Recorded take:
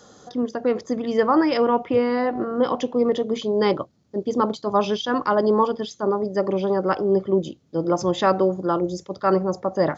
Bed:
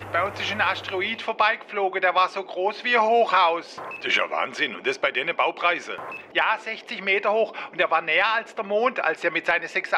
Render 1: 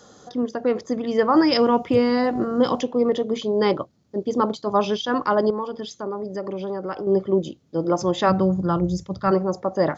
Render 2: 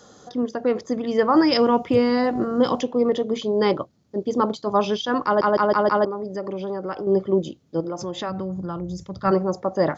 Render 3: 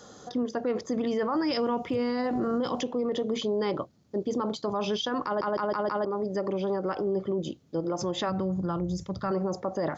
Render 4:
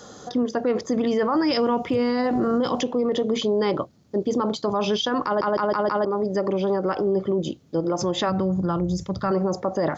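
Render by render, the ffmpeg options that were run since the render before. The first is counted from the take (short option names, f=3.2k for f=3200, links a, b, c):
-filter_complex "[0:a]asettb=1/sr,asplit=3[a][b][c];[a]atrim=end=1.354[d];[b]atrim=start=1.35:end=2.81,asetpts=PTS-STARTPTS,afade=t=in:d=0.004:c=qsin,afade=t=out:st=1.456:d=0.004:c=qsin,bass=f=250:g=7,treble=f=4k:g=14[e];[c]atrim=start=2.806[f];[d][e]acrossfade=d=0.004:c1=hsin:c2=qsin[g];[g][f]acrossfade=d=0.004:c1=qsin:c2=hsin,asettb=1/sr,asplit=3[h][i][j];[h]atrim=end=5.504[k];[i]atrim=start=5.5:end=7.07,asetpts=PTS-STARTPTS,afade=t=in:d=0.004:c=qsin,afade=t=out:st=1.566:d=0.004:c=qsin,acompressor=threshold=-28dB:ratio=2.5:attack=3.2:release=140:knee=1:detection=peak[l];[j]atrim=start=7.066[m];[k][l]acrossfade=d=0.004:c1=hsin:c2=qsin[n];[n][m]acrossfade=d=0.004:c1=qsin:c2=hsin,asplit=3[o][p][q];[o]afade=t=out:st=8.28:d=0.02[r];[p]asubboost=boost=8:cutoff=140,afade=t=in:st=8.28:d=0.02,afade=t=out:st=9.3:d=0.02[s];[q]afade=t=in:st=9.3:d=0.02[t];[r][s][t]amix=inputs=3:normalize=0"
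-filter_complex "[0:a]asettb=1/sr,asplit=3[a][b][c];[a]atrim=end=7.804[d];[b]atrim=start=7.8:end=9.25,asetpts=PTS-STARTPTS,afade=t=in:d=0.004:c=qsin,afade=t=out:st=1.446:d=0.004:c=qsin,acompressor=threshold=-28dB:ratio=3:attack=3.2:release=140:knee=1:detection=peak[e];[c]atrim=start=9.246[f];[d][e]acrossfade=d=0.004:c1=hsin:c2=qsin[g];[g][f]acrossfade=d=0.004:c1=qsin:c2=hsin,asplit=6[h][i][j][k][l][m];[h]atrim=end=5.412[n];[i]atrim=start=5.248:end=5.412[o];[j]atrim=start=5.248:end=5.412[p];[k]atrim=start=5.248:end=5.412[q];[l]atrim=start=5.248:end=5.412[r];[m]atrim=start=6.048[s];[n][o]acrossfade=d=0.004:c1=hsin:c2=hsin[t];[t][p]acrossfade=d=0.004:c1=hsin:c2=hsin[u];[u][q]acrossfade=d=0.004:c1=hsin:c2=hsin[v];[v][r]acrossfade=d=0.004:c1=hsin:c2=hsin[w];[w][s]acrossfade=d=0.004:c1=hsin:c2=hsin"
-af "acompressor=threshold=-20dB:ratio=6,alimiter=limit=-21dB:level=0:latency=1:release=21"
-af "volume=6dB"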